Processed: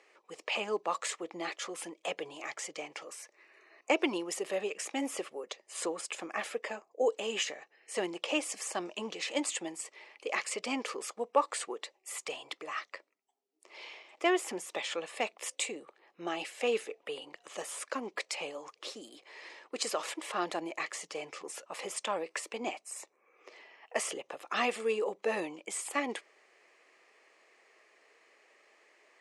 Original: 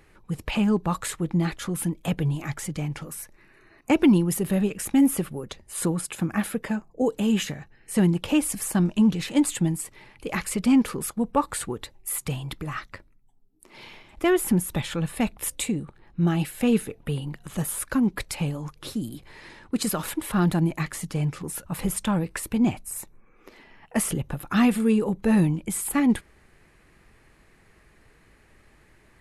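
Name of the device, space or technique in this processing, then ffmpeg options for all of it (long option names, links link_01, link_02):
phone speaker on a table: -af "highpass=frequency=460:width=0.5412,highpass=frequency=460:width=1.3066,equalizer=frequency=890:width_type=q:width=4:gain=-5,equalizer=frequency=1500:width_type=q:width=4:gain=-9,equalizer=frequency=3800:width_type=q:width=4:gain=-5,lowpass=frequency=7300:width=0.5412,lowpass=frequency=7300:width=1.3066"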